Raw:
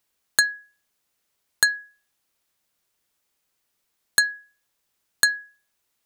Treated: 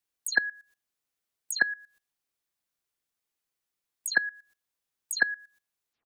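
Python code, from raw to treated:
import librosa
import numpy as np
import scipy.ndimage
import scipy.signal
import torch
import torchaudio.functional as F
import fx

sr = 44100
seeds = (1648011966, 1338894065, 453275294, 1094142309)

y = fx.spec_delay(x, sr, highs='early', ms=123)
y = fx.level_steps(y, sr, step_db=18)
y = y * 10.0 ** (3.5 / 20.0)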